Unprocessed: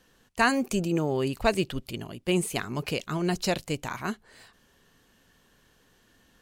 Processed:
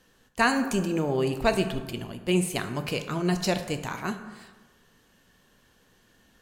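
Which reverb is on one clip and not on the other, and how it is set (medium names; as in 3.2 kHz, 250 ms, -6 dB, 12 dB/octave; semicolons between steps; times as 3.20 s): plate-style reverb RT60 1.3 s, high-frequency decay 0.5×, DRR 7 dB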